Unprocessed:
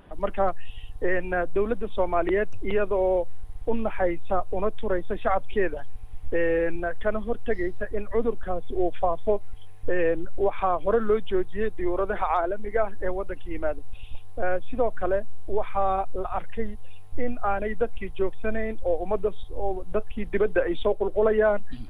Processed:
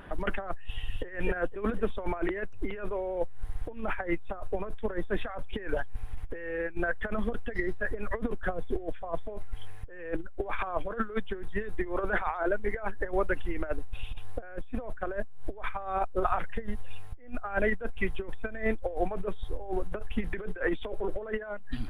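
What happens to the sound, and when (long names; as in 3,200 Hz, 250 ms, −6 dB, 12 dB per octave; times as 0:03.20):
0:00.63–0:01.05: delay throw 250 ms, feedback 50%, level −5 dB
whole clip: parametric band 1,600 Hz +8 dB 0.86 octaves; compressor whose output falls as the input rises −26 dBFS, ratio −0.5; level −2 dB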